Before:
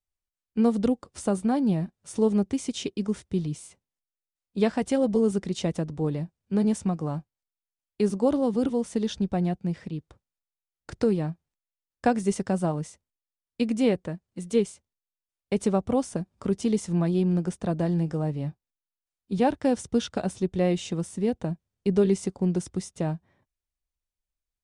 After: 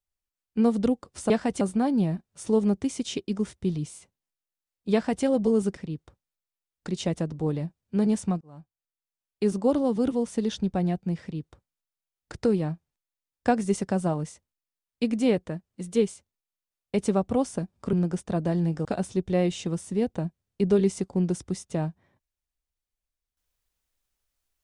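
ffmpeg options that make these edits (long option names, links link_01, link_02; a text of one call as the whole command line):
ffmpeg -i in.wav -filter_complex "[0:a]asplit=8[link_01][link_02][link_03][link_04][link_05][link_06][link_07][link_08];[link_01]atrim=end=1.302[link_09];[link_02]atrim=start=4.618:end=4.932[link_10];[link_03]atrim=start=1.298:end=5.462[link_11];[link_04]atrim=start=9.798:end=10.912[link_12];[link_05]atrim=start=5.458:end=6.99,asetpts=PTS-STARTPTS,afade=type=out:start_time=1.528:duration=0.004:curve=hsin[link_13];[link_06]atrim=start=6.99:end=16.512,asetpts=PTS-STARTPTS,afade=type=in:duration=1.29:curve=qsin[link_14];[link_07]atrim=start=17.268:end=18.192[link_15];[link_08]atrim=start=20.108[link_16];[link_09][link_10]acrossfade=duration=0.004:curve1=hsin:curve2=hsin[link_17];[link_17][link_11]acrossfade=duration=0.004:curve1=hsin:curve2=hsin[link_18];[link_18][link_12]acrossfade=duration=0.004:curve1=hsin:curve2=hsin[link_19];[link_13][link_14]concat=n=2:v=0:a=1[link_20];[link_19][link_20]acrossfade=duration=0.004:curve1=hsin:curve2=hsin[link_21];[link_21][link_15]acrossfade=duration=0.004:curve1=hsin:curve2=hsin[link_22];[link_22][link_16]acrossfade=duration=0.004:curve1=hsin:curve2=hsin" out.wav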